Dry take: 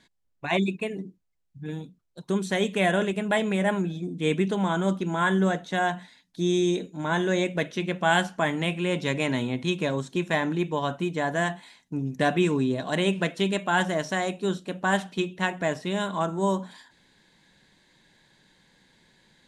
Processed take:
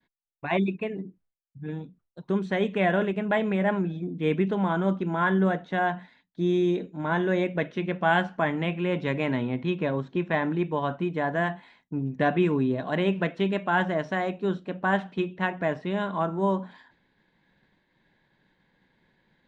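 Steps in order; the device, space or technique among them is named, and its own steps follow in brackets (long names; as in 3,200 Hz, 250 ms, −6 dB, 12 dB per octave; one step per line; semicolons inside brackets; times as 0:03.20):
hearing-loss simulation (low-pass filter 2,300 Hz 12 dB per octave; downward expander −58 dBFS)
0:09.36–0:10.34: Bessel low-pass filter 5,000 Hz, order 2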